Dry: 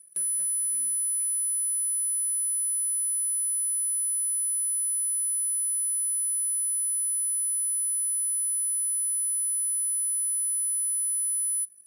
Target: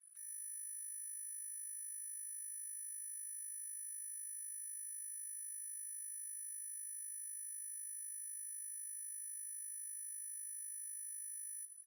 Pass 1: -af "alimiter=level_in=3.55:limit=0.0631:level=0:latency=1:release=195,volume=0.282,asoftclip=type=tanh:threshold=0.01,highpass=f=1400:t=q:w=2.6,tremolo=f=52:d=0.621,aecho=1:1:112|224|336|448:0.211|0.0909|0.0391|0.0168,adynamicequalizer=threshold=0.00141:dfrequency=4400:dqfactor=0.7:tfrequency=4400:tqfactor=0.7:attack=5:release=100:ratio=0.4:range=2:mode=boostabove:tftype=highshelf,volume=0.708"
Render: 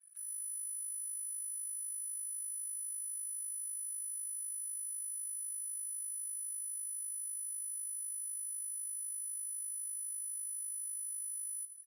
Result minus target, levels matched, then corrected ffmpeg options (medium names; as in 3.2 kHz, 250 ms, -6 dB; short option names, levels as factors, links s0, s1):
saturation: distortion -6 dB
-af "alimiter=level_in=3.55:limit=0.0631:level=0:latency=1:release=195,volume=0.282,asoftclip=type=tanh:threshold=0.00447,highpass=f=1400:t=q:w=2.6,tremolo=f=52:d=0.621,aecho=1:1:112|224|336|448:0.211|0.0909|0.0391|0.0168,adynamicequalizer=threshold=0.00141:dfrequency=4400:dqfactor=0.7:tfrequency=4400:tqfactor=0.7:attack=5:release=100:ratio=0.4:range=2:mode=boostabove:tftype=highshelf,volume=0.708"